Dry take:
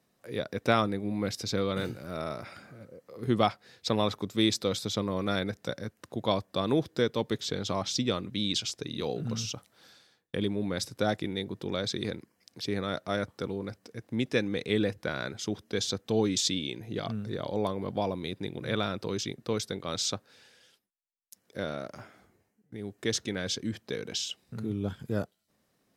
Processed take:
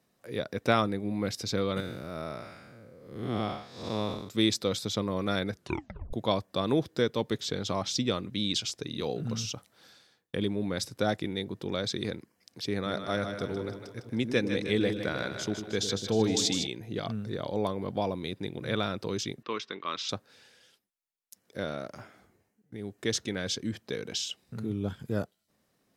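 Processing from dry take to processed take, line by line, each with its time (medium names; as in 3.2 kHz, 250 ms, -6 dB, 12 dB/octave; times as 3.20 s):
1.80–4.29 s: spectral blur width 231 ms
5.52 s: tape stop 0.61 s
12.76–16.67 s: two-band feedback delay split 460 Hz, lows 99 ms, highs 155 ms, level -7 dB
19.43–20.09 s: cabinet simulation 330–4700 Hz, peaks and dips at 520 Hz -8 dB, 740 Hz -8 dB, 1.1 kHz +10 dB, 1.9 kHz +3 dB, 2.7 kHz +7 dB, 4.4 kHz -6 dB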